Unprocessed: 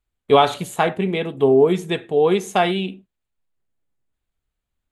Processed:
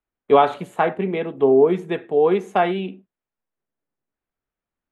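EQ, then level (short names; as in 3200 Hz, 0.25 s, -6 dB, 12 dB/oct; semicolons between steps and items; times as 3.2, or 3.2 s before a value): three-band isolator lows -14 dB, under 170 Hz, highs -17 dB, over 2400 Hz; 0.0 dB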